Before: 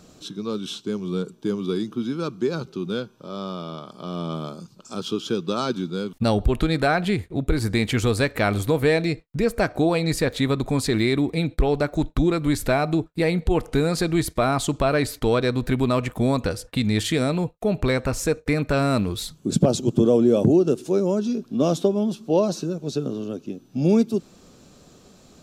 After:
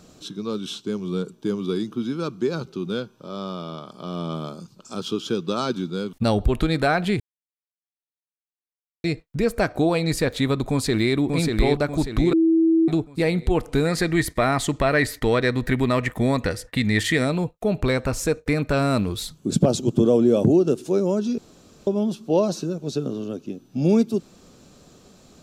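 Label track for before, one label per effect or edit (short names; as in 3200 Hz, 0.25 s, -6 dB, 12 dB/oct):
7.200000	9.040000	mute
10.700000	11.170000	echo throw 0.59 s, feedback 45%, level -3.5 dB
12.330000	12.880000	bleep 326 Hz -14 dBFS
13.850000	17.250000	bell 1900 Hz +14 dB 0.28 oct
21.380000	21.870000	room tone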